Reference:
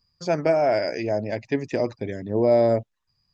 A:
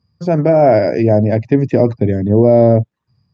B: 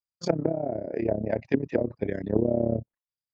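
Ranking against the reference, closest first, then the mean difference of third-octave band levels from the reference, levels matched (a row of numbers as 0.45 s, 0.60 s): A, B; 4.5 dB, 6.5 dB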